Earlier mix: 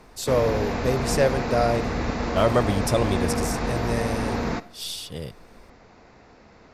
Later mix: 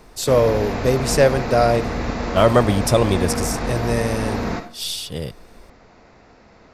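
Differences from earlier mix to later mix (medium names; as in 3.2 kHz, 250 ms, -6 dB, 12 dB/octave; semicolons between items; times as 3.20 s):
speech +6.0 dB; background: send +11.0 dB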